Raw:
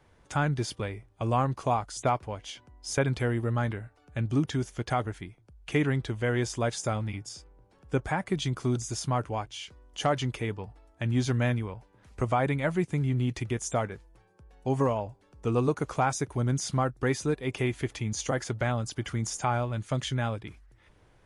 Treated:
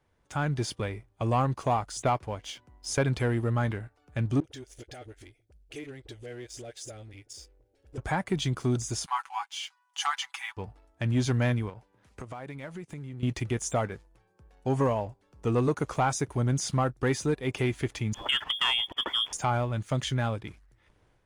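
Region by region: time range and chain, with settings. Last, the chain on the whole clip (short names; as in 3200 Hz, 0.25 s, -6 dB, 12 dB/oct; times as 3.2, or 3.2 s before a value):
4.4–7.98 compressor 2.5:1, threshold -42 dBFS + fixed phaser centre 430 Hz, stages 4 + dispersion highs, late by 41 ms, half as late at 580 Hz
9.06–10.57 brick-wall FIR high-pass 730 Hz + comb 6.1 ms, depth 73%
11.69–13.23 HPF 91 Hz 6 dB/oct + compressor 5:1, threshold -39 dBFS
18.14–19.33 bell 2500 Hz +14.5 dB 0.33 oct + inverted band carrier 3400 Hz
whole clip: AGC gain up to 6 dB; sample leveller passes 1; gain -8.5 dB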